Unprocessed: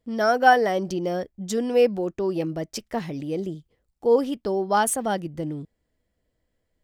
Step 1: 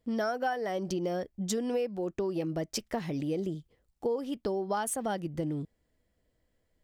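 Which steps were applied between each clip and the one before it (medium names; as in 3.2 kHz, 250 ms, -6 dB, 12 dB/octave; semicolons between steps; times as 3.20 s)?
compression 10:1, threshold -28 dBFS, peak gain reduction 17.5 dB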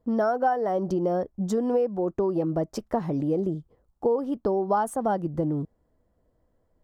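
resonant high shelf 1.6 kHz -12.5 dB, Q 1.5; trim +6 dB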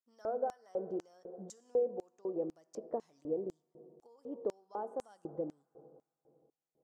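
reverberation RT60 2.8 s, pre-delay 3 ms, DRR 13 dB; LFO band-pass square 2 Hz 480–6900 Hz; trim -6.5 dB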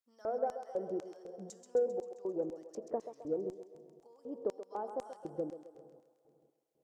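thinning echo 132 ms, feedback 65%, high-pass 470 Hz, level -8 dB; Chebyshev shaper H 3 -30 dB, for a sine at -22 dBFS; trim +1 dB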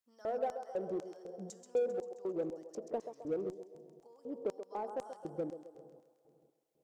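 peaking EQ 170 Hz +3 dB 0.3 oct; in parallel at -5.5 dB: hard clipper -36.5 dBFS, distortion -6 dB; on the sum: trim -3 dB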